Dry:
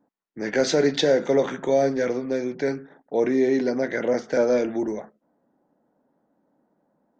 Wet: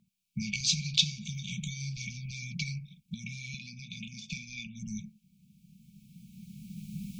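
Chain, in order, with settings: recorder AGC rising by 13 dB/s; 3.54–4.67 s: small resonant body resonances 370/2500/3500 Hz, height 17 dB, ringing for 30 ms; compression 3:1, threshold -28 dBFS, peak gain reduction 15 dB; brick-wall FIR band-stop 210–2200 Hz; trim +8.5 dB

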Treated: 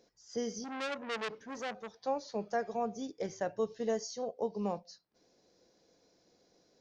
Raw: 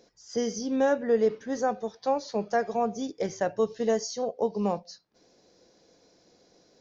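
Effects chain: 0.64–1.95 s: transformer saturation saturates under 2.8 kHz; trim -7.5 dB

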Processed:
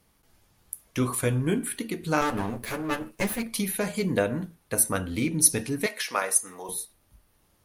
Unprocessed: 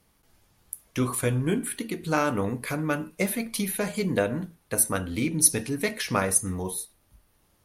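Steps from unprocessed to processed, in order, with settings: 2.21–3.43 s: comb filter that takes the minimum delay 9.2 ms; 5.86–6.69 s: high-pass 580 Hz 12 dB/octave

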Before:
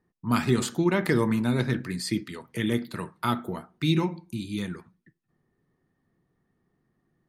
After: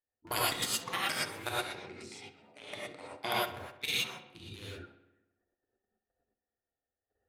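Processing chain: local Wiener filter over 41 samples; tremolo 19 Hz, depth 42%; tilt EQ +3 dB/octave; in parallel at +0.5 dB: compression 16:1, threshold -39 dBFS, peak gain reduction 18 dB; on the sum: spectral gate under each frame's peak -10 dB weak; level held to a coarse grid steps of 17 dB; 1.68–3.32 s: cabinet simulation 150–7600 Hz, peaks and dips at 210 Hz +4 dB, 780 Hz +7 dB, 1.7 kHz -9 dB, 3.5 kHz -4 dB, 6.7 kHz -5 dB; on a send: filtered feedback delay 65 ms, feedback 66%, low-pass 4.4 kHz, level -13 dB; on the sum: gated-style reverb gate 140 ms rising, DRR -6 dB

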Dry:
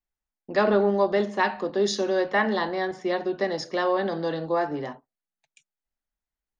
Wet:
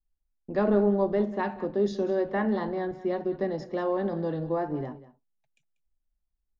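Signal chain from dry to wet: tilt EQ -4 dB/octave; wow and flutter 29 cents; delay 190 ms -16.5 dB; trim -7.5 dB

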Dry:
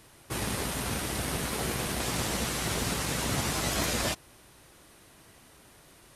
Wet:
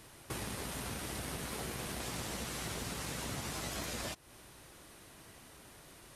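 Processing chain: compression 4:1, threshold -39 dBFS, peak gain reduction 12 dB

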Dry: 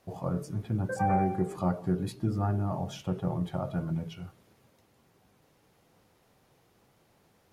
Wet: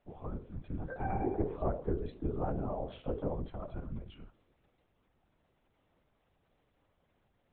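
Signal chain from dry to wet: 1.25–3.49 s: peaking EQ 480 Hz +13 dB 1 oct; LPC vocoder at 8 kHz whisper; trim -8.5 dB

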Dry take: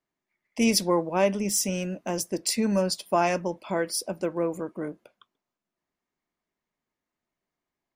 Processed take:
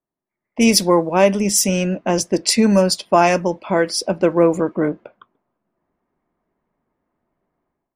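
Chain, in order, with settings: level-controlled noise filter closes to 1.1 kHz, open at -21.5 dBFS; level rider gain up to 16 dB

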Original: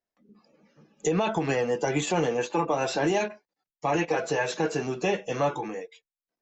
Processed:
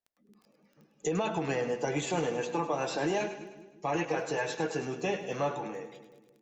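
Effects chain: crackle 11 per s -43 dBFS; two-band feedback delay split 440 Hz, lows 175 ms, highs 103 ms, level -10.5 dB; trim -5.5 dB

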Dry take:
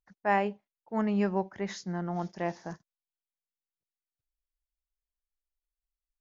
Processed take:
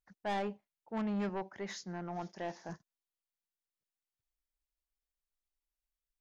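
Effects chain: 1.29–2.69 s: bass shelf 190 Hz -10.5 dB; saturation -28.5 dBFS, distortion -9 dB; trim -2.5 dB

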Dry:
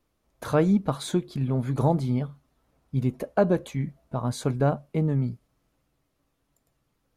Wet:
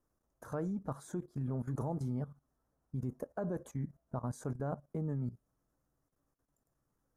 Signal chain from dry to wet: level held to a coarse grid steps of 15 dB; high-order bell 3.1 kHz -15 dB 1.3 oct; trim -5.5 dB

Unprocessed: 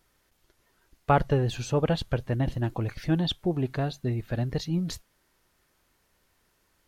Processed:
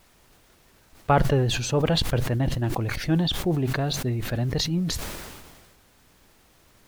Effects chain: added noise pink -60 dBFS; decay stretcher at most 35 dB/s; trim +1.5 dB

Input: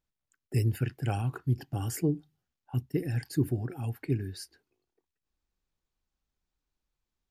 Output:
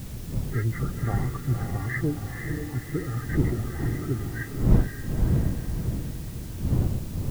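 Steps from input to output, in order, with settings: knee-point frequency compression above 1.1 kHz 4:1; wind noise 130 Hz -29 dBFS; on a send: echo that smears into a reverb 505 ms, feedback 48%, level -5 dB; on the sum: word length cut 8-bit, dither triangular

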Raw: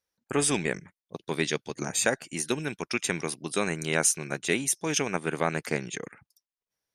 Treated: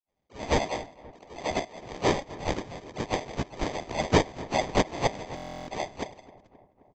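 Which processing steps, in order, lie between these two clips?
differentiator; de-hum 260.5 Hz, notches 21; in parallel at -2.5 dB: peak limiter -20 dBFS, peak gain reduction 11 dB; on the sum: small resonant body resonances 2/3.4 kHz, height 16 dB, ringing for 30 ms; phase dispersion highs, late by 94 ms, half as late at 1.5 kHz; sample-and-hold 32×; harmony voices +4 st -7 dB; on a send: filtered feedback delay 263 ms, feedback 66%, low-pass 1.9 kHz, level -19 dB; on the sum: resampled via 16 kHz; buffer glitch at 5.35 s, samples 1024, times 13

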